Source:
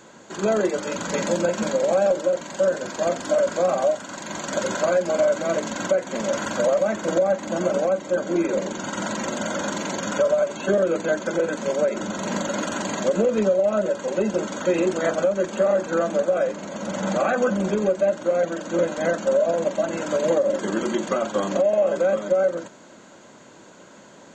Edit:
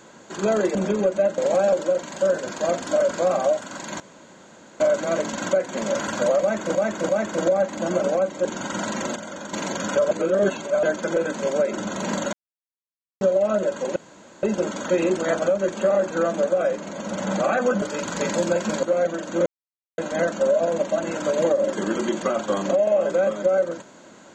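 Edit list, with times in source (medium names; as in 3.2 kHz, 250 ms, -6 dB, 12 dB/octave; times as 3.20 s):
0.75–1.76 s: swap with 17.58–18.21 s
4.38–5.18 s: room tone
6.79–7.13 s: loop, 3 plays
8.15–8.68 s: delete
9.39–9.76 s: gain -8.5 dB
10.34–11.06 s: reverse
12.56–13.44 s: mute
14.19 s: insert room tone 0.47 s
18.84 s: insert silence 0.52 s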